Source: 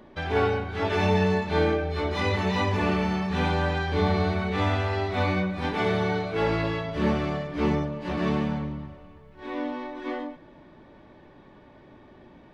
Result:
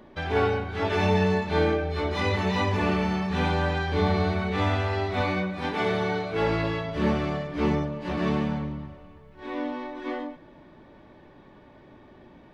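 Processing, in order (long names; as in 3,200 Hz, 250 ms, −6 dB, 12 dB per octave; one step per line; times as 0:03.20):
0:05.21–0:06.31: low-shelf EQ 95 Hz −10.5 dB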